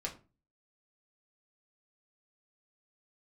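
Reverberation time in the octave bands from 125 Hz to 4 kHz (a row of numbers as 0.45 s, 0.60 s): 0.50 s, 0.45 s, 0.35 s, 0.30 s, 0.25 s, 0.20 s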